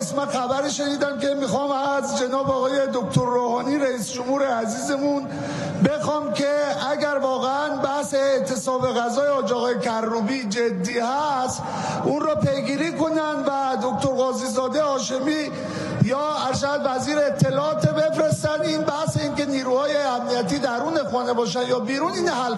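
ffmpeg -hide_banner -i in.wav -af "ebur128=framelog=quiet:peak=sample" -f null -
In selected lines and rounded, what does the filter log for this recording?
Integrated loudness:
  I:         -22.6 LUFS
  Threshold: -32.6 LUFS
Loudness range:
  LRA:         1.3 LU
  Threshold: -42.6 LUFS
  LRA low:   -23.1 LUFS
  LRA high:  -21.8 LUFS
Sample peak:
  Peak:       -4.2 dBFS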